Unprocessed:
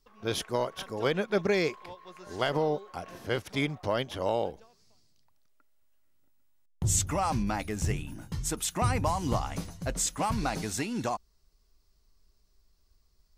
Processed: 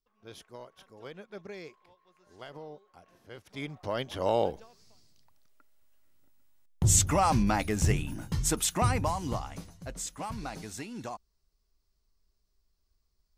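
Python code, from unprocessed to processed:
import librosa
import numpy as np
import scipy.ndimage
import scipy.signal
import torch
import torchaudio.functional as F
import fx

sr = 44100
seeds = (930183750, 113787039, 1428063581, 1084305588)

y = fx.gain(x, sr, db=fx.line((3.33, -17.0), (3.69, -7.0), (4.47, 4.0), (8.57, 4.0), (9.67, -8.0)))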